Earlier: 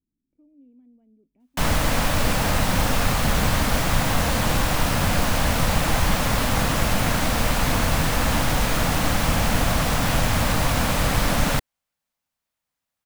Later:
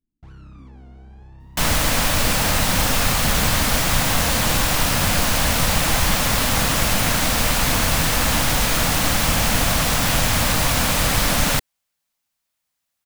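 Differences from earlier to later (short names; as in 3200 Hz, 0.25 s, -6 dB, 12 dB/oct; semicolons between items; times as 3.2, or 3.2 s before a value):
first sound: unmuted; master: add high shelf 2100 Hz +8 dB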